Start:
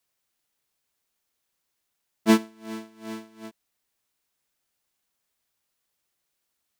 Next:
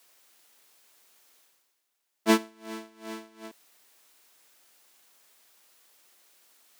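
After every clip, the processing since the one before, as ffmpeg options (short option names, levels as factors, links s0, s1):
-af "highpass=300,areverse,acompressor=mode=upward:threshold=0.00501:ratio=2.5,areverse"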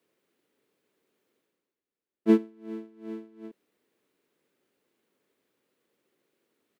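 -af "firequalizer=gain_entry='entry(430,0);entry(710,-16);entry(2100,-16);entry(5400,-26)':delay=0.05:min_phase=1,volume=1.5"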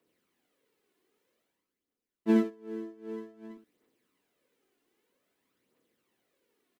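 -af "aecho=1:1:59|62|63|125:0.531|0.335|0.596|0.251,aphaser=in_gain=1:out_gain=1:delay=2.9:decay=0.46:speed=0.52:type=triangular,volume=0.668"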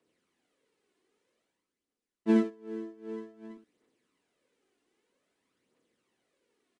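-af "aresample=22050,aresample=44100"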